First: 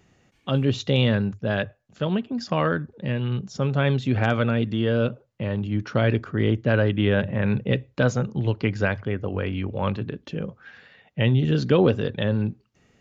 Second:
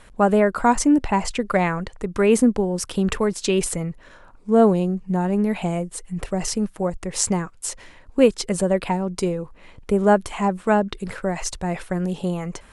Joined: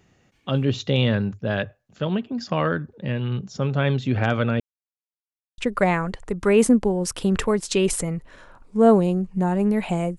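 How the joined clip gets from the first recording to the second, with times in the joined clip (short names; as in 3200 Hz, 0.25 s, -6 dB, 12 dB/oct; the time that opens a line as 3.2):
first
4.6–5.58 mute
5.58 switch to second from 1.31 s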